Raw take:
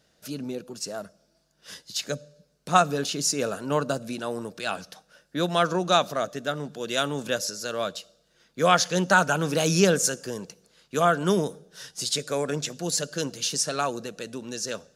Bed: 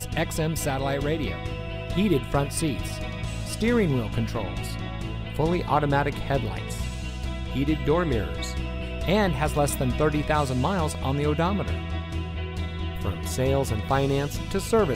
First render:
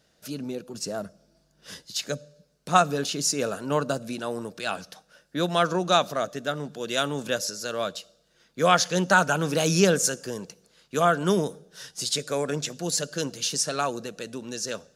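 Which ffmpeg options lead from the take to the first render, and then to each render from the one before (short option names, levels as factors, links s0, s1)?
-filter_complex "[0:a]asettb=1/sr,asplit=3[s0][s1][s2];[s0]atrim=end=0.744[s3];[s1]atrim=start=0.74:end=1.86,asetpts=PTS-STARTPTS,afade=t=in:d=0.004:c=qsin,afade=t=out:st=1.116:d=0.004:c=qsin,lowshelf=f=450:g=7.5[s4];[s2]atrim=start=1.856[s5];[s3][s4]acrossfade=d=0.004:c1=hsin:c2=qsin[s6];[s6][s5]acrossfade=d=0.004:c1=qsin:c2=hsin"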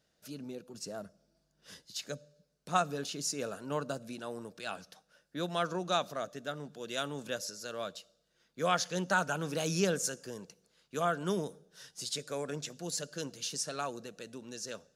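-af "volume=0.316"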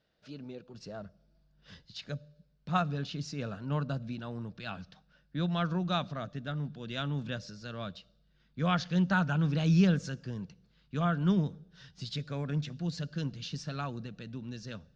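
-af "lowpass=f=4400:w=0.5412,lowpass=f=4400:w=1.3066,asubboost=boost=10.5:cutoff=140"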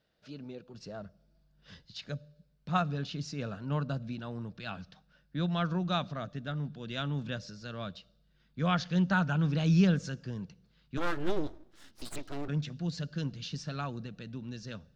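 -filter_complex "[0:a]asettb=1/sr,asplit=3[s0][s1][s2];[s0]atrim=end=10.974[s3];[s1]atrim=start=10.97:end=12.48,asetpts=PTS-STARTPTS,afade=t=in:d=0.004:c=qsin,afade=t=out:st=1.506:d=0.004:c=qsin,aeval=exprs='abs(val(0))':c=same[s4];[s2]atrim=start=12.476[s5];[s3][s4]acrossfade=d=0.004:c1=hsin:c2=qsin[s6];[s6][s5]acrossfade=d=0.004:c1=qsin:c2=hsin"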